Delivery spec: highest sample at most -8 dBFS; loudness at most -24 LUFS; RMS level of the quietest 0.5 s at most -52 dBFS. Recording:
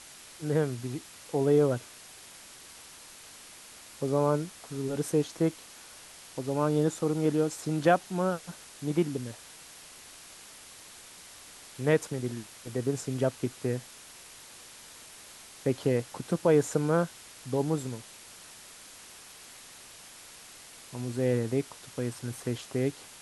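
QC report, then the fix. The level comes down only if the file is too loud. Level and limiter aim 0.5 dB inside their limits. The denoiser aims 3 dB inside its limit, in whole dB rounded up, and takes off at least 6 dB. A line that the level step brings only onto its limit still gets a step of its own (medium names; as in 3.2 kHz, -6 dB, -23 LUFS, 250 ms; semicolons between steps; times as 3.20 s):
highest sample -10.5 dBFS: pass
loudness -30.0 LUFS: pass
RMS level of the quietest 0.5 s -50 dBFS: fail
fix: noise reduction 6 dB, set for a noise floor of -50 dBFS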